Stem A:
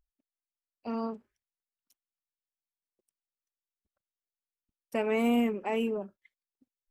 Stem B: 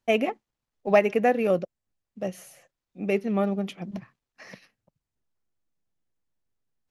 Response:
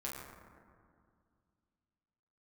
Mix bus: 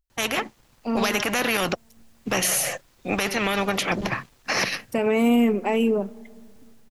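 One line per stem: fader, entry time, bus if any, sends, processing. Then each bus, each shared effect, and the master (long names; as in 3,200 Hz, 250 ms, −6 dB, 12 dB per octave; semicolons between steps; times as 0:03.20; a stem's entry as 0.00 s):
+2.0 dB, 0.00 s, send −21.5 dB, parametric band 1,100 Hz −3.5 dB 3 octaves
−3.5 dB, 0.10 s, no send, every bin compressed towards the loudest bin 4 to 1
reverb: on, RT60 2.1 s, pre-delay 7 ms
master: automatic gain control gain up to 10 dB; brickwall limiter −12.5 dBFS, peak gain reduction 10 dB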